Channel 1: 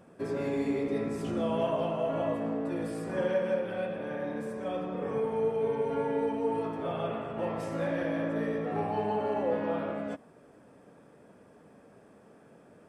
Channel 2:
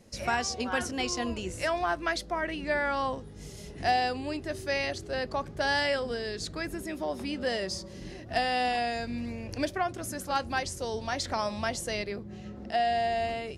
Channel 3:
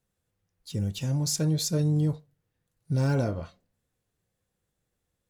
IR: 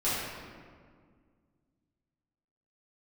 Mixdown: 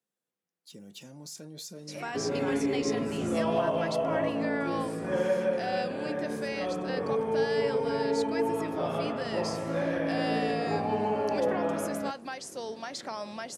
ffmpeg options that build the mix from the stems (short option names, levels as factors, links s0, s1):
-filter_complex "[0:a]adelay=1950,volume=1.19[s0];[1:a]adelay=1750,volume=0.668[s1];[2:a]alimiter=level_in=1.19:limit=0.0631:level=0:latency=1:release=17,volume=0.841,volume=0.422[s2];[s1][s2]amix=inputs=2:normalize=0,highpass=f=200:w=0.5412,highpass=f=200:w=1.3066,alimiter=level_in=1.19:limit=0.0631:level=0:latency=1:release=144,volume=0.841,volume=1[s3];[s0][s3]amix=inputs=2:normalize=0"